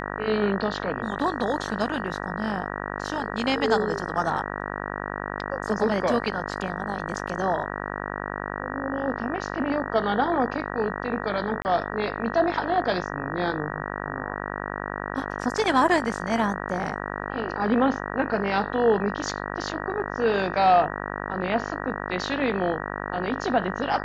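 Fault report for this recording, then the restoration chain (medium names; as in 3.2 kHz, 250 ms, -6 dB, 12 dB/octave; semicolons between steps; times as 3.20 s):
buzz 50 Hz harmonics 38 -32 dBFS
11.62–11.65 s: dropout 29 ms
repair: de-hum 50 Hz, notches 38; interpolate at 11.62 s, 29 ms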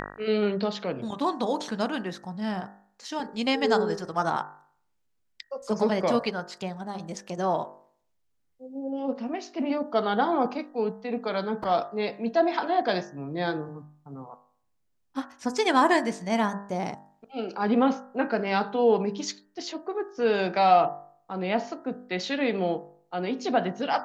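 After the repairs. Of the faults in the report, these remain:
nothing left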